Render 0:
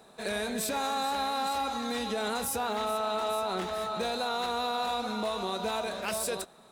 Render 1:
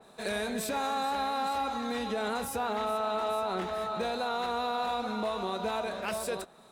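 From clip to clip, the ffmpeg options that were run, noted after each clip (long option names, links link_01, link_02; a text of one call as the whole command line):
ffmpeg -i in.wav -af "adynamicequalizer=threshold=0.00355:dfrequency=3300:dqfactor=0.7:tfrequency=3300:tqfactor=0.7:attack=5:release=100:ratio=0.375:range=3.5:mode=cutabove:tftype=highshelf" out.wav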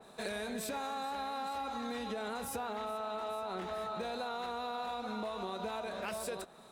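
ffmpeg -i in.wav -af "acompressor=threshold=-36dB:ratio=5" out.wav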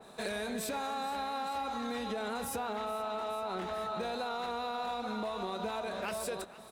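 ffmpeg -i in.wav -filter_complex "[0:a]asplit=2[link_01][link_02];[link_02]asoftclip=type=hard:threshold=-35.5dB,volume=-9dB[link_03];[link_01][link_03]amix=inputs=2:normalize=0,aecho=1:1:471:0.126" out.wav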